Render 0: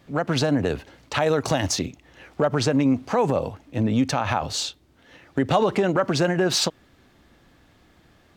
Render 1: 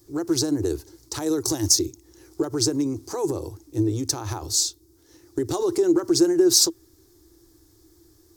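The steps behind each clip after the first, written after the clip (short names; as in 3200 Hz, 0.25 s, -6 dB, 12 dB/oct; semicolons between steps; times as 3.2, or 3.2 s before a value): EQ curve 110 Hz 0 dB, 220 Hz -26 dB, 330 Hz +11 dB, 580 Hz -16 dB, 940 Hz -9 dB, 2800 Hz -18 dB, 5200 Hz +8 dB, 8300 Hz +10 dB, 13000 Hz +15 dB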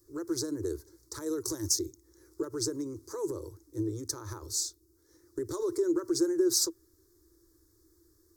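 fixed phaser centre 750 Hz, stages 6; gain -7.5 dB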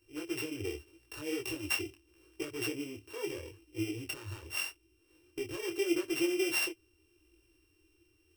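sample sorter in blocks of 16 samples; detuned doubles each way 28 cents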